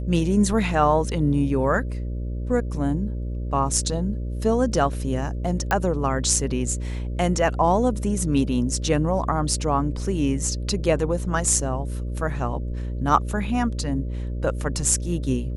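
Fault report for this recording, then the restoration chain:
buzz 60 Hz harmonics 10 -28 dBFS
5.71 pop -9 dBFS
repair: de-click; de-hum 60 Hz, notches 10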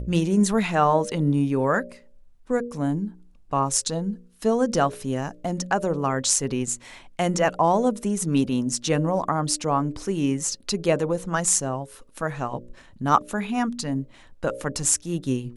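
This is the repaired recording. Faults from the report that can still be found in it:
none

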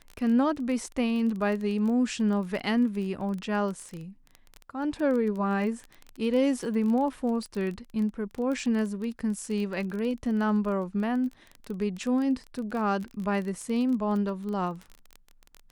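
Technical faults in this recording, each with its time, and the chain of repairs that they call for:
crackle 20/s -32 dBFS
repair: de-click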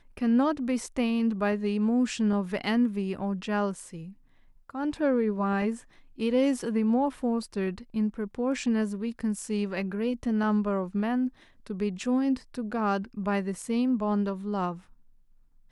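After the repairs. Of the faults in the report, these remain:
none

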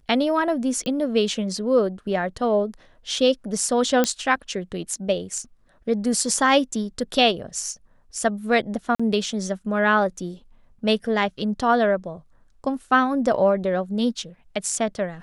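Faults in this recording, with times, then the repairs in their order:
0.86 pop -17 dBFS
4.04 pop -6 dBFS
8.95–8.99 gap 45 ms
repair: de-click; interpolate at 8.95, 45 ms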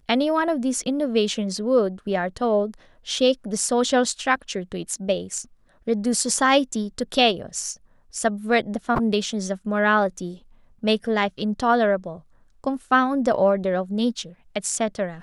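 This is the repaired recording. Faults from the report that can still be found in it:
0.86 pop

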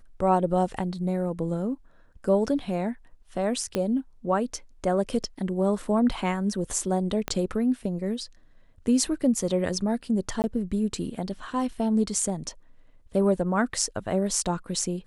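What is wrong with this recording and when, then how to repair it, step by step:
3.75 pop -12 dBFS
7.28 pop -12 dBFS
10.42–10.44 gap 19 ms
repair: de-click; interpolate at 10.42, 19 ms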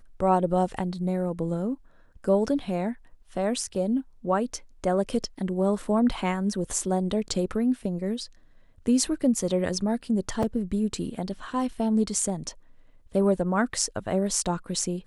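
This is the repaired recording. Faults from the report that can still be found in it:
3.75 pop
7.28 pop

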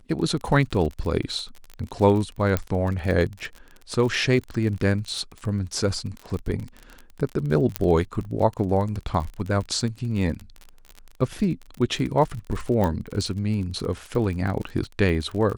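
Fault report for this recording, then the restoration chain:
crackle 39/s -29 dBFS
2.57 pop -9 dBFS
7.76 pop -6 dBFS
12.84 pop -13 dBFS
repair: de-click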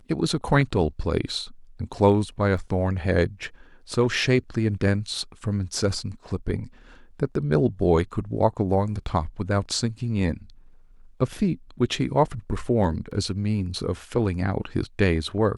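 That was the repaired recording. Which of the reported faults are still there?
2.57 pop
12.84 pop

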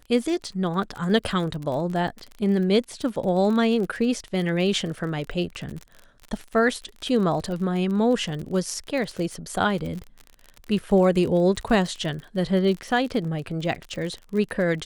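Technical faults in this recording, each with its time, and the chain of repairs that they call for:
crackle 36/s -30 dBFS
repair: de-click

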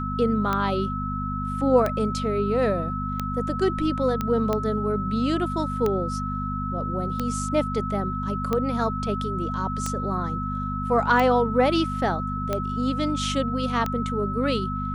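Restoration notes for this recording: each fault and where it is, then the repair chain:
hum 50 Hz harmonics 5 -30 dBFS
tick 45 rpm -12 dBFS
tone 1300 Hz -30 dBFS
4.21 pop -13 dBFS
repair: de-click; de-hum 50 Hz, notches 5; notch 1300 Hz, Q 30

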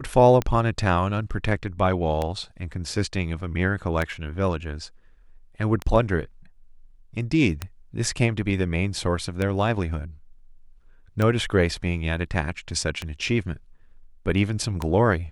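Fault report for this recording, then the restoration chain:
tick 33 1/3 rpm -12 dBFS
7.62 pop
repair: de-click

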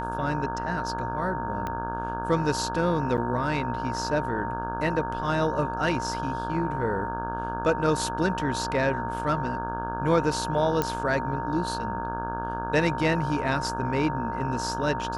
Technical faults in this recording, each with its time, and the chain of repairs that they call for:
buzz 60 Hz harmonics 28 -34 dBFS
tone 920 Hz -31 dBFS
1.67 pop -18 dBFS
3.17–3.18 gap 8.5 ms
10.82 pop -11 dBFS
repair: de-click; de-hum 60 Hz, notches 28; notch 920 Hz, Q 30; interpolate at 3.17, 8.5 ms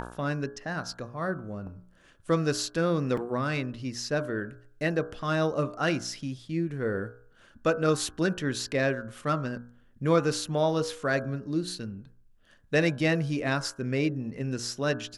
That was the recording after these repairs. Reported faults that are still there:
1.67 pop

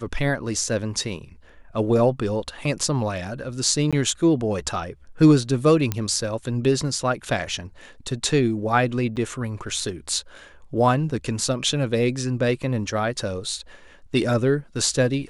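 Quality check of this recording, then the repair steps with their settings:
3.91–3.93 gap 16 ms
5.92 pop -9 dBFS
9.16–9.17 gap 6.4 ms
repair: de-click; interpolate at 3.91, 16 ms; interpolate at 9.16, 6.4 ms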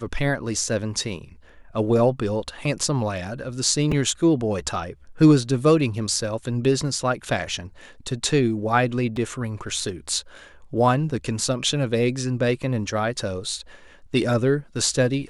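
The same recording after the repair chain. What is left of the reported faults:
5.92 pop

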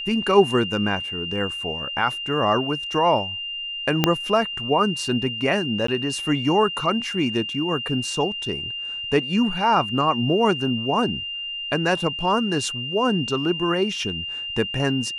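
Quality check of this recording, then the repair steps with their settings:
tone 2800 Hz -28 dBFS
4.04 pop -2 dBFS
5.87–5.88 gap 14 ms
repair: de-click; notch 2800 Hz, Q 30; interpolate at 5.87, 14 ms

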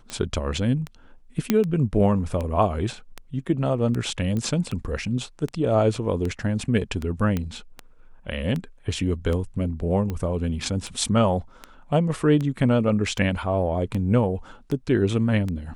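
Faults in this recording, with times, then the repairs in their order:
tick 78 rpm -17 dBFS
1.5 pop -6 dBFS
4.37 pop -17 dBFS
7.37 pop -13 dBFS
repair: de-click

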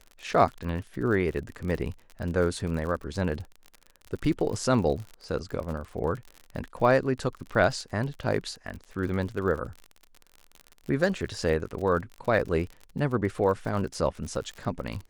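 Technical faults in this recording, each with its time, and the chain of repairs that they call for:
crackle 43/s -34 dBFS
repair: de-click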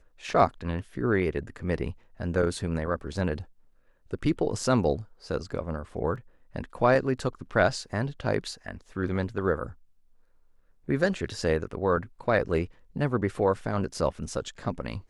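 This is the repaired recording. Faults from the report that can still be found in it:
none

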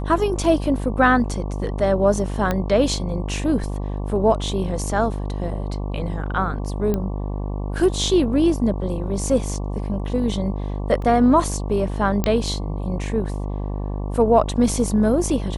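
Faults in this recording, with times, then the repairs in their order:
buzz 50 Hz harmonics 23 -26 dBFS
2.51 pop -9 dBFS
6.94 pop -11 dBFS
11.02 gap 2.2 ms
12.24 pop -7 dBFS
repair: de-click; de-hum 50 Hz, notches 23; interpolate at 11.02, 2.2 ms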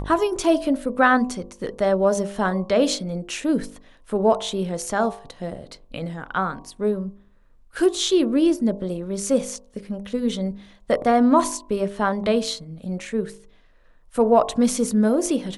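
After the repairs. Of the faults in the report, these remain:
none

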